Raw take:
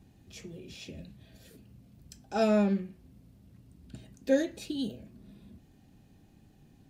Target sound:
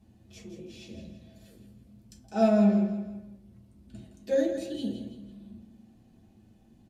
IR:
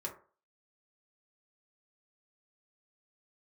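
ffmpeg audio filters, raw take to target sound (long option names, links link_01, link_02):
-filter_complex "[0:a]aecho=1:1:165|330|495|660:0.335|0.134|0.0536|0.0214[link_01];[1:a]atrim=start_sample=2205,atrim=end_sample=3087,asetrate=26019,aresample=44100[link_02];[link_01][link_02]afir=irnorm=-1:irlink=0,volume=-4.5dB"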